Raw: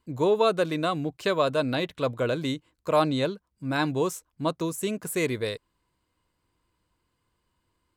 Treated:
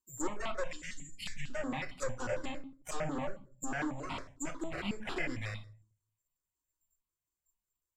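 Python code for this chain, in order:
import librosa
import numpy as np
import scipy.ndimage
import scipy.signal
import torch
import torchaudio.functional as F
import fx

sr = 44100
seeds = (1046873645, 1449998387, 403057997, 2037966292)

y = fx.noise_reduce_blind(x, sr, reduce_db=24)
y = fx.tilt_eq(y, sr, slope=-3.0, at=(3.15, 3.73))
y = (np.kron(y[::6], np.eye(6)[0]) * 6)[:len(y)]
y = fx.peak_eq(y, sr, hz=6000.0, db=-13.0, octaves=0.73, at=(4.51, 5.27))
y = fx.tube_stage(y, sr, drive_db=23.0, bias=0.65)
y = fx.env_lowpass_down(y, sr, base_hz=450.0, full_db=-18.0)
y = fx.cheby1_bandstop(y, sr, low_hz=230.0, high_hz=1900.0, order=4, at=(0.67, 1.5))
y = fx.room_shoebox(y, sr, seeds[0], volume_m3=290.0, walls='furnished', distance_m=1.0)
y = fx.env_lowpass_down(y, sr, base_hz=3000.0, full_db=-34.5)
y = fx.phaser_held(y, sr, hz=11.0, low_hz=570.0, high_hz=1700.0)
y = F.gain(torch.from_numpy(y), 4.5).numpy()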